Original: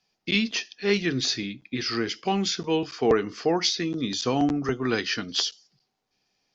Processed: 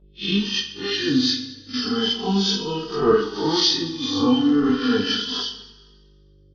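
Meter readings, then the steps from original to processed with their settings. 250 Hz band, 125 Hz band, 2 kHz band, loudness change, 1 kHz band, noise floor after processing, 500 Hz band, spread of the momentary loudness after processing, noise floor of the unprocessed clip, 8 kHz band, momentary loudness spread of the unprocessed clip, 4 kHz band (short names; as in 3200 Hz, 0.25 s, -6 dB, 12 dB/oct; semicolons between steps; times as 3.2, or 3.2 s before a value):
+6.0 dB, +2.0 dB, -1.0 dB, +4.5 dB, +2.0 dB, -53 dBFS, +2.5 dB, 8 LU, -78 dBFS, n/a, 5 LU, +6.5 dB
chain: spectral swells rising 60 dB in 1.13 s; gate -25 dBFS, range -43 dB; low shelf 390 Hz -4 dB; fixed phaser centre 2200 Hz, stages 6; harmonic tremolo 2.6 Hz, depth 70%, crossover 1400 Hz; small resonant body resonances 260/450/2200/3100 Hz, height 11 dB, ringing for 40 ms; buzz 50 Hz, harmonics 11, -58 dBFS -6 dB/oct; on a send: reverse bouncing-ball echo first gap 20 ms, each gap 1.4×, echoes 5; on the sum: plate-style reverb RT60 1.5 s, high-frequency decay 0.95×, DRR 13.5 dB; endless flanger 2.7 ms -0.33 Hz; gain +5.5 dB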